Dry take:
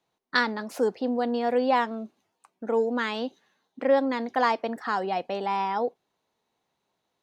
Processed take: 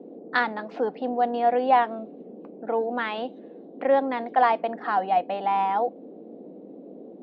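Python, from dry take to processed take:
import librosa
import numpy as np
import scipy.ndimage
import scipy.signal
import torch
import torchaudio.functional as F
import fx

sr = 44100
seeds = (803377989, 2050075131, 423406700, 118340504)

y = fx.dmg_noise_band(x, sr, seeds[0], low_hz=200.0, high_hz=480.0, level_db=-40.0)
y = fx.cabinet(y, sr, low_hz=140.0, low_slope=12, high_hz=3400.0, hz=(230.0, 380.0, 730.0), db=(-4, -7, 9))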